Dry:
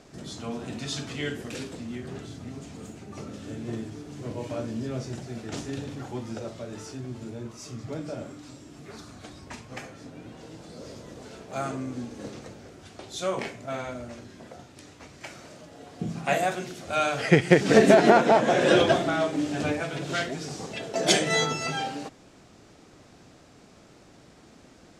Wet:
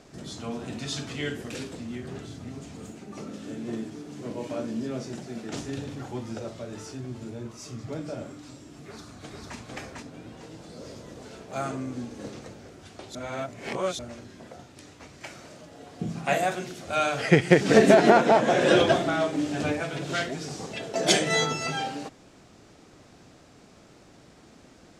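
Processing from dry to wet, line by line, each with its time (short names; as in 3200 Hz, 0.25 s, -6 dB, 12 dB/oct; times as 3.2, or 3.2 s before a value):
2.92–5.55 resonant low shelf 140 Hz -7.5 dB, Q 1.5
8.77–9.57 echo throw 0.45 s, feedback 25%, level -1.5 dB
13.15–13.99 reverse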